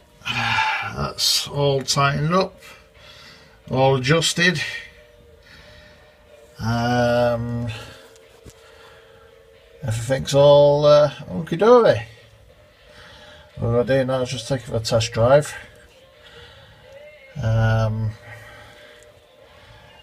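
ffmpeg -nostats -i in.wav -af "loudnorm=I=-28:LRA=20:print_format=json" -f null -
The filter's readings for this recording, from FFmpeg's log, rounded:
"input_i" : "-19.2",
"input_tp" : "-1.4",
"input_lra" : "9.6",
"input_thresh" : "-32.0",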